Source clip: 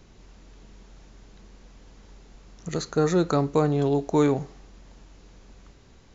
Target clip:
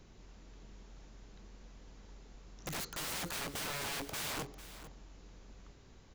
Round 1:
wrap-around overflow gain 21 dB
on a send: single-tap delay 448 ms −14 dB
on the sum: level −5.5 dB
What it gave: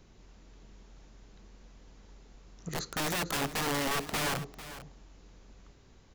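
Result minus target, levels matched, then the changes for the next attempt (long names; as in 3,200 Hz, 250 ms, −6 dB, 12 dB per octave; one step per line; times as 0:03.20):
wrap-around overflow: distortion −4 dB
change: wrap-around overflow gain 29 dB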